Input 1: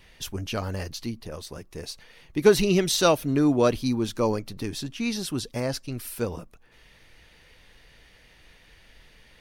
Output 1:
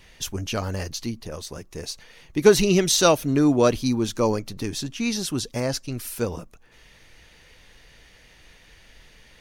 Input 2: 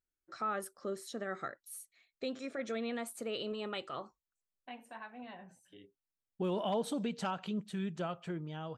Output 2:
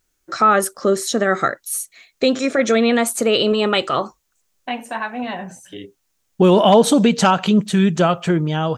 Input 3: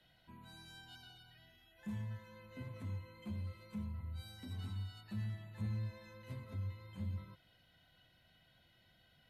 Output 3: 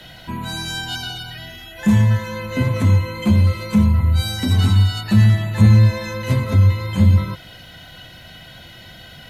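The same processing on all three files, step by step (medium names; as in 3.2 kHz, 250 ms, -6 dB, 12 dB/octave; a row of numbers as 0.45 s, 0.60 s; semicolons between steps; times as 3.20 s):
peaking EQ 6.5 kHz +5.5 dB 0.48 oct; peak normalisation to -2 dBFS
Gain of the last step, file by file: +2.5 dB, +22.0 dB, +28.5 dB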